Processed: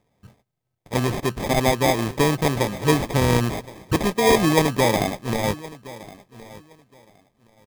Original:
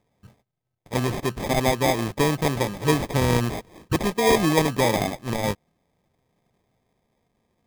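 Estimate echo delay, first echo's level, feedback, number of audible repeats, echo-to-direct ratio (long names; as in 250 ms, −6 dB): 1,068 ms, −19.0 dB, 20%, 2, −19.0 dB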